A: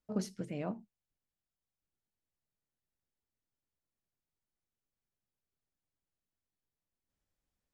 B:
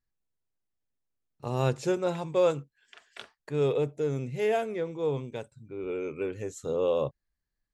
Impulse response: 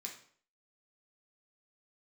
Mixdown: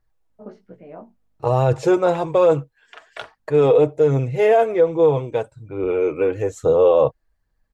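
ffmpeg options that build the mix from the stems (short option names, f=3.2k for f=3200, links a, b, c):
-filter_complex "[0:a]flanger=delay=16:depth=2.8:speed=2.3,lowpass=2.8k,aeval=exprs='val(0)+0.000282*(sin(2*PI*50*n/s)+sin(2*PI*2*50*n/s)/2+sin(2*PI*3*50*n/s)/3+sin(2*PI*4*50*n/s)/4+sin(2*PI*5*50*n/s)/5)':c=same,adelay=300,volume=-8dB[a];[1:a]lowshelf=f=130:t=q:w=1.5:g=9,aecho=1:1:6.3:0.36,aphaser=in_gain=1:out_gain=1:delay=4.5:decay=0.34:speed=1.2:type=triangular,volume=2dB,asplit=2[b][c];[c]apad=whole_len=354475[d];[a][d]sidechaincompress=threshold=-37dB:ratio=8:attack=16:release=727[e];[e][b]amix=inputs=2:normalize=0,equalizer=f=680:w=0.42:g=14,alimiter=limit=-7dB:level=0:latency=1:release=14"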